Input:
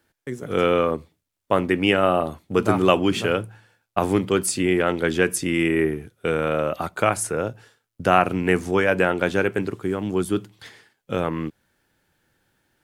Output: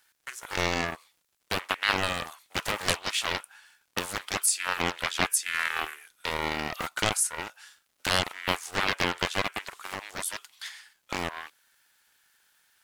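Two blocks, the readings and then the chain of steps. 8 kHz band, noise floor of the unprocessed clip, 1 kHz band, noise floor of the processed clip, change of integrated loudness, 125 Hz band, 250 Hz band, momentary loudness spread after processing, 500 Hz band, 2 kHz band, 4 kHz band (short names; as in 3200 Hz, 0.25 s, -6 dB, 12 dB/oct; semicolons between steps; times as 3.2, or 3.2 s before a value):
+2.0 dB, -80 dBFS, -7.0 dB, -74 dBFS, -7.0 dB, -12.0 dB, -16.0 dB, 13 LU, -15.5 dB, -3.0 dB, +2.0 dB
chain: HPF 950 Hz 24 dB/oct; high shelf 3200 Hz +9.5 dB; compressor 1.5:1, threshold -32 dBFS, peak gain reduction 7.5 dB; crackle 150/s -55 dBFS; Doppler distortion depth 0.91 ms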